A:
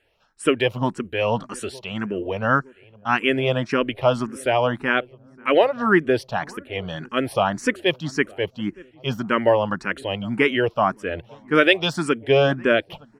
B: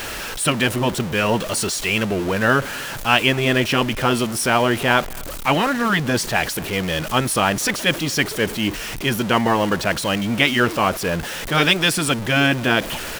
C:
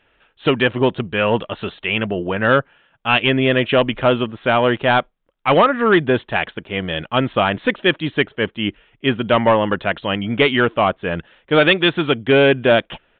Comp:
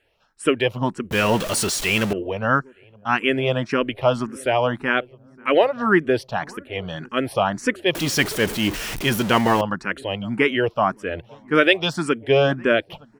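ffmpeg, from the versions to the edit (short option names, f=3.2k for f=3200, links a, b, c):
-filter_complex "[1:a]asplit=2[a][b];[0:a]asplit=3[c][d][e];[c]atrim=end=1.112[f];[a]atrim=start=1.108:end=2.132[g];[d]atrim=start=2.128:end=7.952[h];[b]atrim=start=7.948:end=9.612[i];[e]atrim=start=9.608[j];[f][g]acrossfade=d=0.004:c1=hsin:c2=hsin[k];[k][h]acrossfade=d=0.004:c1=hsin:c2=hsin[l];[l][i]acrossfade=d=0.004:c1=hsin:c2=hsin[m];[m][j]acrossfade=d=0.004:c1=hsin:c2=hsin"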